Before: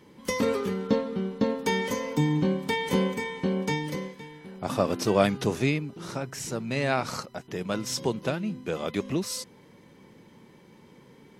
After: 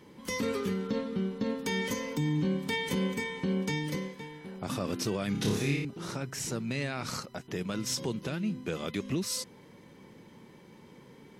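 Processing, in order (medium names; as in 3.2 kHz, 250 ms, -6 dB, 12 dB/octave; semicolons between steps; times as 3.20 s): dynamic bell 720 Hz, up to -8 dB, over -41 dBFS, Q 0.9; peak limiter -21.5 dBFS, peak gain reduction 10.5 dB; 5.32–5.85 s: flutter echo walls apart 4.9 m, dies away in 0.6 s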